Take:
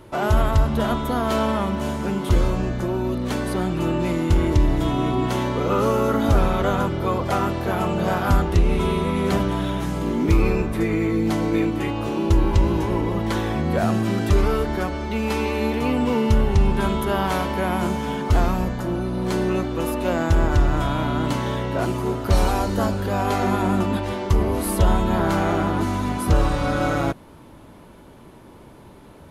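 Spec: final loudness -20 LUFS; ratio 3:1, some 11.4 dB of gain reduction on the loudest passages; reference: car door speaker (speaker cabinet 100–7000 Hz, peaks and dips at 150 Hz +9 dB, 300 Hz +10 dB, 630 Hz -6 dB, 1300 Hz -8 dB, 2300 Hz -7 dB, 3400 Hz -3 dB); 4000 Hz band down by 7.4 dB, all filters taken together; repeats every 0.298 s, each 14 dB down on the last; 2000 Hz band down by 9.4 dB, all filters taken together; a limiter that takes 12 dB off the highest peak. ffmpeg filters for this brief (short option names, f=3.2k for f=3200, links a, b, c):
-af "equalizer=f=2k:t=o:g=-6.5,equalizer=f=4k:t=o:g=-4,acompressor=threshold=-28dB:ratio=3,alimiter=level_in=2.5dB:limit=-24dB:level=0:latency=1,volume=-2.5dB,highpass=100,equalizer=f=150:t=q:w=4:g=9,equalizer=f=300:t=q:w=4:g=10,equalizer=f=630:t=q:w=4:g=-6,equalizer=f=1.3k:t=q:w=4:g=-8,equalizer=f=2.3k:t=q:w=4:g=-7,equalizer=f=3.4k:t=q:w=4:g=-3,lowpass=f=7k:w=0.5412,lowpass=f=7k:w=1.3066,aecho=1:1:298|596:0.2|0.0399,volume=12.5dB"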